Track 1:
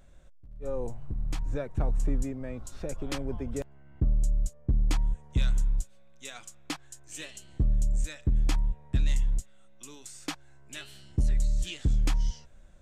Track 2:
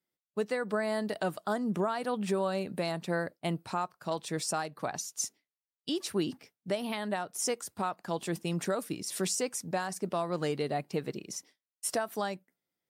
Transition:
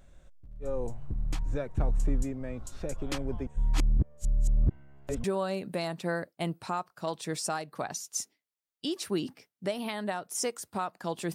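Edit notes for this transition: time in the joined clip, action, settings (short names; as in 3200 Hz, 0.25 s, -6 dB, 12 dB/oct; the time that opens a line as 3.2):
track 1
3.47–5.24 reverse
5.24 switch to track 2 from 2.28 s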